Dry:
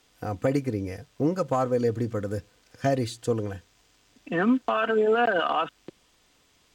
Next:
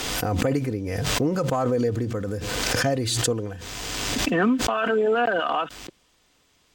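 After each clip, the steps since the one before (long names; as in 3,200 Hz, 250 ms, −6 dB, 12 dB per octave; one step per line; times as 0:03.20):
background raised ahead of every attack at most 22 dB per second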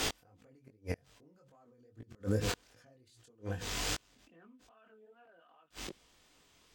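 gate with flip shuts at −18 dBFS, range −37 dB
chorus effect 2.5 Hz, delay 18 ms, depth 5.9 ms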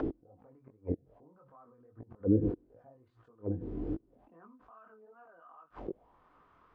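envelope-controlled low-pass 330–1,300 Hz down, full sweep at −37 dBFS
level +1 dB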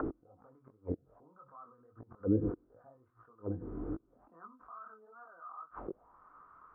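low-pass with resonance 1,300 Hz, resonance Q 5
level −3.5 dB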